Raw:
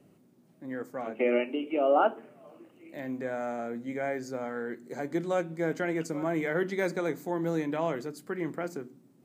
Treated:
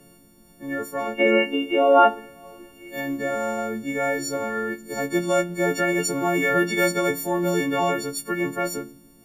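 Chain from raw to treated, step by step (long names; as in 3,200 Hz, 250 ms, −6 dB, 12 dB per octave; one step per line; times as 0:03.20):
every partial snapped to a pitch grid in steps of 4 semitones
background noise brown −68 dBFS
level +7 dB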